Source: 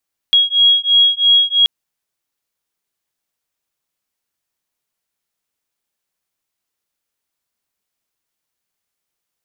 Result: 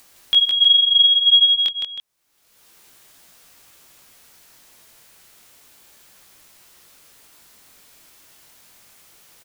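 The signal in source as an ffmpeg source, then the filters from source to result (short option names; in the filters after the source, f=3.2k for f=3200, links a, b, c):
-f lavfi -i "aevalsrc='0.237*(sin(2*PI*3300*t)+sin(2*PI*3303*t))':d=1.33:s=44100"
-filter_complex "[0:a]acompressor=mode=upward:threshold=-25dB:ratio=2.5,flanger=delay=16:depth=7.5:speed=0.31,asplit=2[a][b];[b]aecho=0:1:163|316:0.631|0.266[c];[a][c]amix=inputs=2:normalize=0"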